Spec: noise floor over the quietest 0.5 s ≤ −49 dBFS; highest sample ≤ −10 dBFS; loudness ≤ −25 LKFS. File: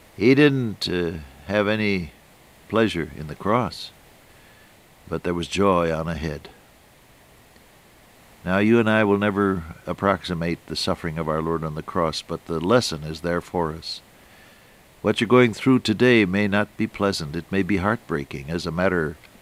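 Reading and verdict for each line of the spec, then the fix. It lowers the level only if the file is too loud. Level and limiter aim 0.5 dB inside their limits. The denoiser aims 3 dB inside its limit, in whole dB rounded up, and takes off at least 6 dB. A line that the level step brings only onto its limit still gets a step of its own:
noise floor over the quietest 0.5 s −52 dBFS: in spec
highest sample −3.0 dBFS: out of spec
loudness −22.5 LKFS: out of spec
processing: level −3 dB
brickwall limiter −10.5 dBFS

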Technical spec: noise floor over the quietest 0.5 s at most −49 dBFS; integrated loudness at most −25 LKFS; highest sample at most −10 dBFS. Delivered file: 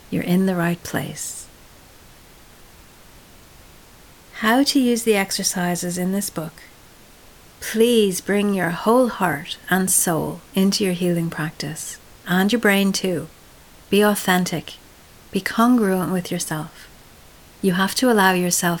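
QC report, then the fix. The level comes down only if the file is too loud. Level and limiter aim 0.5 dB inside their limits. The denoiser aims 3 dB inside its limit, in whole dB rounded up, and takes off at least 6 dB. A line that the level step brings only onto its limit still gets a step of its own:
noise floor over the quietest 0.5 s −47 dBFS: out of spec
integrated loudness −20.0 LKFS: out of spec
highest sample −3.0 dBFS: out of spec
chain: level −5.5 dB
brickwall limiter −10.5 dBFS

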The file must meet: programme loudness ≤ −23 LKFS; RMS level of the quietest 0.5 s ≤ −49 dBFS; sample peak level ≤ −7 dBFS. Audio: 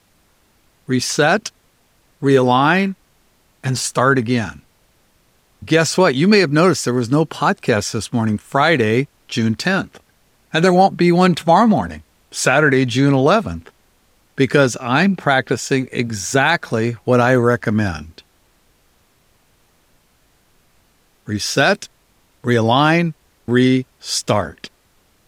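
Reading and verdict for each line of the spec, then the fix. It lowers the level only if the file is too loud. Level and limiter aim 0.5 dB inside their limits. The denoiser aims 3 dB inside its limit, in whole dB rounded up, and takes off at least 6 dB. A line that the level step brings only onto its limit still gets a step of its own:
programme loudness −16.5 LKFS: out of spec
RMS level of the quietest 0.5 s −58 dBFS: in spec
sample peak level −1.5 dBFS: out of spec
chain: level −7 dB

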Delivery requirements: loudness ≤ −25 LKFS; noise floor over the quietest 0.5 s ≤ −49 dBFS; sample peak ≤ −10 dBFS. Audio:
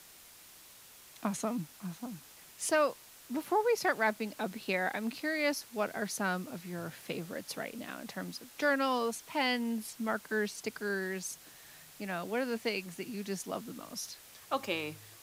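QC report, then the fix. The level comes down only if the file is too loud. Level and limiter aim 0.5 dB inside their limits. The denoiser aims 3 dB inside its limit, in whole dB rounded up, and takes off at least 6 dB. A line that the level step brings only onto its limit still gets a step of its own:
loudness −35.0 LKFS: in spec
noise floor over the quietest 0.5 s −55 dBFS: in spec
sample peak −15.5 dBFS: in spec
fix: no processing needed

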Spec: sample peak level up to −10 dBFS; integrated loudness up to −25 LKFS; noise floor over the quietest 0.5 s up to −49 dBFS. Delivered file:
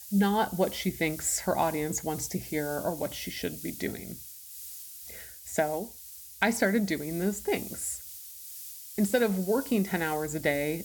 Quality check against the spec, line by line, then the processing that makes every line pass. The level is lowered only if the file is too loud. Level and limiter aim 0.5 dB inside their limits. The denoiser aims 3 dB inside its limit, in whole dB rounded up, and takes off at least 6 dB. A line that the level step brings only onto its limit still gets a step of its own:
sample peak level −11.0 dBFS: in spec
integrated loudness −30.0 LKFS: in spec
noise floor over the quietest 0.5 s −47 dBFS: out of spec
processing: broadband denoise 6 dB, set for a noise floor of −47 dBFS

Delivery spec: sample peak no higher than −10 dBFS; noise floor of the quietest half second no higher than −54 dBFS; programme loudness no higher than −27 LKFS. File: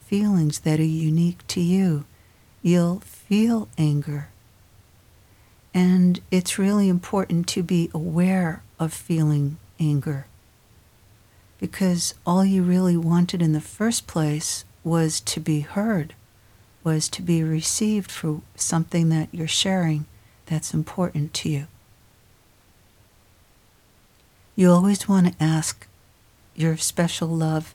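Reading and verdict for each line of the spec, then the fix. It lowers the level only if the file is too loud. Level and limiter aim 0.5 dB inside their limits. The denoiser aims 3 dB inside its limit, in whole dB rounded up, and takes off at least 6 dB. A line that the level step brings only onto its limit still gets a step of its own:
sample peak −6.0 dBFS: out of spec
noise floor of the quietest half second −57 dBFS: in spec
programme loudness −22.5 LKFS: out of spec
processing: level −5 dB

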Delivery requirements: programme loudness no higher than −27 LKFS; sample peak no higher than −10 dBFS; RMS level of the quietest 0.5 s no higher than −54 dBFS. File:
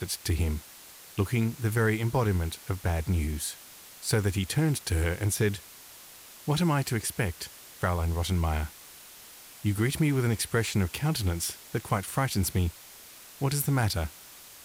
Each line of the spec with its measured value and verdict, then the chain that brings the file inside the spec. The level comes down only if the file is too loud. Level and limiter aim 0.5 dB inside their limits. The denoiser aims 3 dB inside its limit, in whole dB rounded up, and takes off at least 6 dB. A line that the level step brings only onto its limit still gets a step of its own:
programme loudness −29.0 LKFS: in spec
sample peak −15.0 dBFS: in spec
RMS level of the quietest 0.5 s −49 dBFS: out of spec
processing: broadband denoise 8 dB, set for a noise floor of −49 dBFS

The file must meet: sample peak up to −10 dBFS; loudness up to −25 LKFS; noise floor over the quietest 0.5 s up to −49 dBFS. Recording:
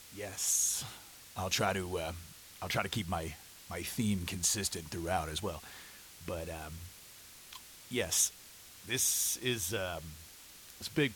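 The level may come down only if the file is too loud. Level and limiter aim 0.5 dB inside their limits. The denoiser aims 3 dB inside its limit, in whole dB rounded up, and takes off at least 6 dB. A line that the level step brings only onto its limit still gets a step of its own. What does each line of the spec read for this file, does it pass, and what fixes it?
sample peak −16.0 dBFS: in spec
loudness −34.0 LKFS: in spec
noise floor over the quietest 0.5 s −54 dBFS: in spec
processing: no processing needed

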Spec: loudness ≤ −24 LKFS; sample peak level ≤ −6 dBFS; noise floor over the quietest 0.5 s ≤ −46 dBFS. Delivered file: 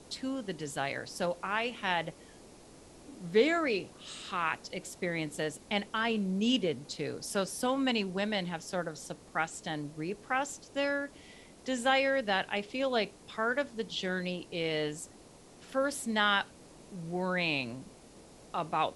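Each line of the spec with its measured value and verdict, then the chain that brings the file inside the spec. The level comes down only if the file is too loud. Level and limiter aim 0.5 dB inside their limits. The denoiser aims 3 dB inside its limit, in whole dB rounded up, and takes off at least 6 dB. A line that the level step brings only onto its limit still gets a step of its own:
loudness −32.5 LKFS: in spec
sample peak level −14.0 dBFS: in spec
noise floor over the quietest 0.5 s −55 dBFS: in spec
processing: no processing needed

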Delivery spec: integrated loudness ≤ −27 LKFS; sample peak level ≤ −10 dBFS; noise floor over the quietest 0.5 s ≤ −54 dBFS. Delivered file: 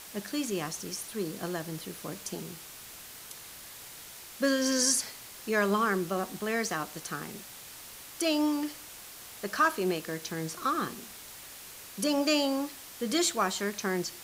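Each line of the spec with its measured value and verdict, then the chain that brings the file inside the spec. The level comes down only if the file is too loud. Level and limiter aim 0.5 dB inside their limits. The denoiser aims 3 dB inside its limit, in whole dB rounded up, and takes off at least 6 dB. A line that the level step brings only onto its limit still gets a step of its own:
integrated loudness −30.5 LKFS: in spec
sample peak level −13.5 dBFS: in spec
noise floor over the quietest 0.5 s −47 dBFS: out of spec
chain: broadband denoise 10 dB, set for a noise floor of −47 dBFS

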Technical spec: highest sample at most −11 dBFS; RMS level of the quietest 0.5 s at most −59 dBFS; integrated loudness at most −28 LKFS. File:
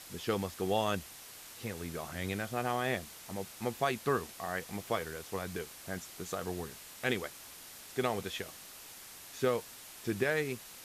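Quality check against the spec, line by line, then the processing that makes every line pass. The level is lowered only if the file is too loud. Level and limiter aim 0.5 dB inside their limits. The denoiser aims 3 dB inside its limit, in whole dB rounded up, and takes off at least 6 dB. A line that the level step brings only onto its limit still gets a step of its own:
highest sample −17.0 dBFS: in spec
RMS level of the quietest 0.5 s −50 dBFS: out of spec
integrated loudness −36.0 LKFS: in spec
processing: broadband denoise 12 dB, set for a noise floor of −50 dBFS

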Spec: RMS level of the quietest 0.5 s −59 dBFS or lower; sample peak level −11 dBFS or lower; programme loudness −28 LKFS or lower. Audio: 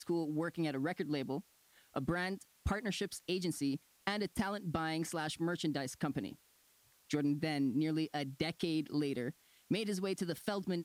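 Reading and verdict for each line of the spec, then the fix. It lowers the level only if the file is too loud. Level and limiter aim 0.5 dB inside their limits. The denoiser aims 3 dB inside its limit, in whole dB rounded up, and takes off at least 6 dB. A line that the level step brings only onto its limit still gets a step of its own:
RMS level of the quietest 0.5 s −69 dBFS: in spec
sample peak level −19.0 dBFS: in spec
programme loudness −37.5 LKFS: in spec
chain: no processing needed

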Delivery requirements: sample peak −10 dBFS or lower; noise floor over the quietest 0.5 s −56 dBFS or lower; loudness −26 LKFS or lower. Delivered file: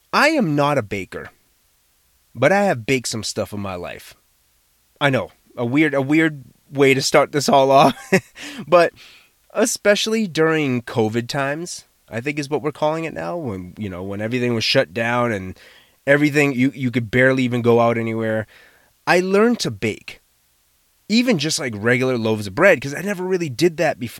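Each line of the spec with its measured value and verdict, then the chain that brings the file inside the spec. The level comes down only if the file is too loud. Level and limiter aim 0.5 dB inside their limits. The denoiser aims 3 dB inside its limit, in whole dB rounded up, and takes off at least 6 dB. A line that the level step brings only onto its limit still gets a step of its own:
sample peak −1.5 dBFS: out of spec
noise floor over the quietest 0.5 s −61 dBFS: in spec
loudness −18.5 LKFS: out of spec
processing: level −8 dB
brickwall limiter −10.5 dBFS

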